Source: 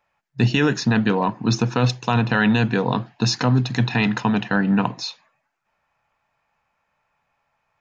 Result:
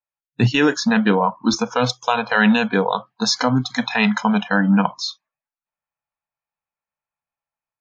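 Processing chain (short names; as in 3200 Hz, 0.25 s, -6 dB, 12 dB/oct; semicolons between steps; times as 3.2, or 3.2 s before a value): spectral noise reduction 27 dB; AGC gain up to 5 dB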